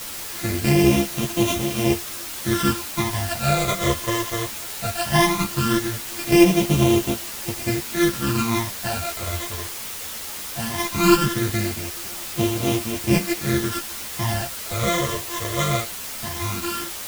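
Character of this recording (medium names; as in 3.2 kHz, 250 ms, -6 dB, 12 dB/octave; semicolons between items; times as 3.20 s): a buzz of ramps at a fixed pitch in blocks of 128 samples; phasing stages 12, 0.18 Hz, lowest notch 250–1600 Hz; a quantiser's noise floor 6-bit, dither triangular; a shimmering, thickened sound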